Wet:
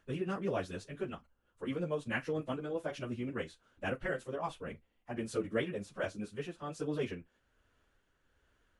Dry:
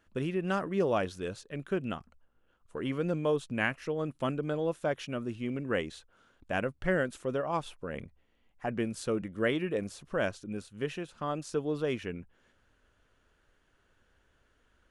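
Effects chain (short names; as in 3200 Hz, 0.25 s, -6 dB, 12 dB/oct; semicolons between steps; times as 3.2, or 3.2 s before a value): tremolo 0.76 Hz, depth 33%; flutter echo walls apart 10.4 m, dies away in 0.22 s; plain phase-vocoder stretch 0.59×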